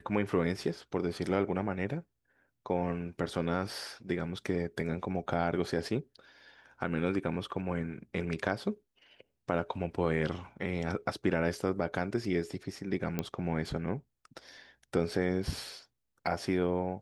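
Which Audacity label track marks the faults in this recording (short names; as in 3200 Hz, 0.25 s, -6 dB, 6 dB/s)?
13.190000	13.190000	pop -17 dBFS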